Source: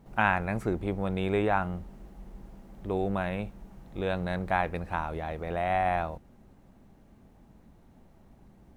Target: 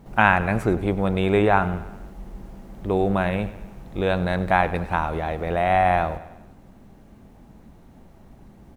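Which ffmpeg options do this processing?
ffmpeg -i in.wav -af "aecho=1:1:98|196|294|392|490:0.158|0.0856|0.0462|0.025|0.0135,volume=8dB" out.wav

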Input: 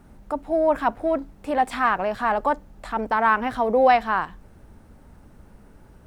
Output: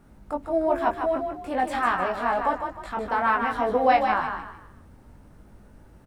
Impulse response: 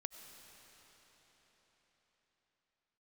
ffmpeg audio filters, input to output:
-filter_complex "[0:a]flanger=delay=19:depth=2.6:speed=0.73,asplit=2[link_01][link_02];[link_02]asplit=4[link_03][link_04][link_05][link_06];[link_03]adelay=153,afreqshift=32,volume=-6dB[link_07];[link_04]adelay=306,afreqshift=64,volume=-15.9dB[link_08];[link_05]adelay=459,afreqshift=96,volume=-25.8dB[link_09];[link_06]adelay=612,afreqshift=128,volume=-35.7dB[link_10];[link_07][link_08][link_09][link_10]amix=inputs=4:normalize=0[link_11];[link_01][link_11]amix=inputs=2:normalize=0"

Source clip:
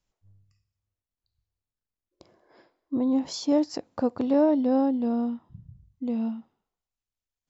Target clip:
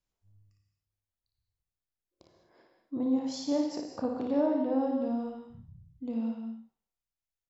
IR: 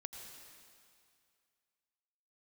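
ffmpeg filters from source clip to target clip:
-filter_complex "[0:a]asettb=1/sr,asplit=3[link_01][link_02][link_03];[link_01]atrim=end=4.404[link_04];[link_02]atrim=start=4.4:end=4.81,asetpts=PTS-STARTPTS,afade=type=in:duration=0.004:curve=qsin,afade=type=out:start_time=0.406:duration=0.004:curve=qsin,lowpass=3400[link_05];[link_03]atrim=start=4.806[link_06];[link_04][link_05]acrossfade=duration=0.004:curve1=hsin:curve2=qsin[link_07];[link_07][link_06]acrossfade=duration=0.004:curve1=qsin:curve2=hsin,aecho=1:1:31|57:0.335|0.562[link_08];[1:a]atrim=start_sample=2205,afade=type=out:start_time=0.27:duration=0.01,atrim=end_sample=12348[link_09];[link_08][link_09]afir=irnorm=-1:irlink=0,volume=-2.5dB"

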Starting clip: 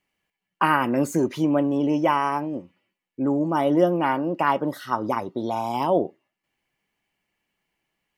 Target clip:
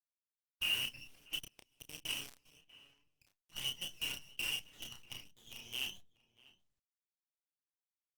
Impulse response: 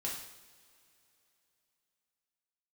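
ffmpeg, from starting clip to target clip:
-filter_complex "[0:a]asuperpass=centerf=2900:order=4:qfactor=5.9,aeval=exprs='val(0)+0.0001*(sin(2*PI*60*n/s)+sin(2*PI*2*60*n/s)/2+sin(2*PI*3*60*n/s)/3+sin(2*PI*4*60*n/s)/4+sin(2*PI*5*60*n/s)/5)':channel_layout=same,acrusher=bits=8:dc=4:mix=0:aa=0.000001,flanger=delay=6.2:depth=3.8:regen=63:speed=0.75:shape=triangular,asplit=2[link_01][link_02];[link_02]adelay=31,volume=-4.5dB[link_03];[link_01][link_03]amix=inputs=2:normalize=0,asplit=2[link_04][link_05];[link_05]adelay=641.4,volume=-20dB,highshelf=frequency=4000:gain=-14.4[link_06];[link_04][link_06]amix=inputs=2:normalize=0,asplit=3[link_07][link_08][link_09];[link_07]afade=type=out:start_time=1.38:duration=0.02[link_10];[link_08]aeval=exprs='0.02*(cos(1*acos(clip(val(0)/0.02,-1,1)))-cos(1*PI/2))+0.00447*(cos(3*acos(clip(val(0)/0.02,-1,1)))-cos(3*PI/2))+0.000224*(cos(5*acos(clip(val(0)/0.02,-1,1)))-cos(5*PI/2))+0.000355*(cos(7*acos(clip(val(0)/0.02,-1,1)))-cos(7*PI/2))+0.00126*(cos(8*acos(clip(val(0)/0.02,-1,1)))-cos(8*PI/2))':channel_layout=same,afade=type=in:start_time=1.38:duration=0.02,afade=type=out:start_time=2.45:duration=0.02[link_11];[link_09]afade=type=in:start_time=2.45:duration=0.02[link_12];[link_10][link_11][link_12]amix=inputs=3:normalize=0,volume=9.5dB" -ar 48000 -c:a libopus -b:a 24k

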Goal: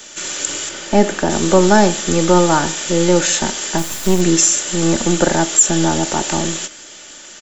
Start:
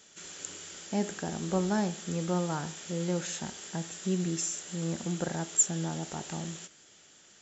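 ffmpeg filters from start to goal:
ffmpeg -i in.wav -filter_complex "[0:a]aecho=1:1:3.4:0.37,acrossover=split=290|380|3900[link_01][link_02][link_03][link_04];[link_01]aeval=exprs='max(val(0),0)':channel_layout=same[link_05];[link_05][link_02][link_03][link_04]amix=inputs=4:normalize=0,asettb=1/sr,asplit=3[link_06][link_07][link_08];[link_06]atrim=end=0.694[link_09];[link_07]atrim=start=0.69:end=1.3,asetpts=PTS-STARTPTS,afade=type=in:duration=0.004:curve=qsin,afade=type=out:start_time=0.606:duration=0.004:curve=qsin,highshelf=frequency=3900:gain=-9[link_10];[link_08]atrim=start=1.296[link_11];[link_09][link_10]acrossfade=duration=0.004:curve1=hsin:curve2=qsin[link_12];[link_12][link_11]acrossfade=duration=0.004:curve1=qsin:curve2=hsin,asplit=3[link_13][link_14][link_15];[link_13]afade=type=out:start_time=3.77:duration=0.02[link_16];[link_14]acrusher=bits=5:dc=4:mix=0:aa=0.000001,afade=type=in:start_time=3.77:duration=0.02,afade=type=out:start_time=4.2:duration=0.02[link_17];[link_15]afade=type=in:start_time=4.2:duration=0.02[link_18];[link_16][link_17][link_18]amix=inputs=3:normalize=0,alimiter=level_in=21dB:limit=-1dB:release=50:level=0:latency=1,volume=-1dB" out.wav

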